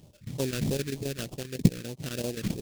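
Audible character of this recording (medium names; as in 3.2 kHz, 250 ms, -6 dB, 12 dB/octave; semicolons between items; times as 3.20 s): chopped level 7.6 Hz, depth 65%, duty 85%; aliases and images of a low sample rate 2.1 kHz, jitter 20%; phasing stages 2, 3.2 Hz, lowest notch 740–1500 Hz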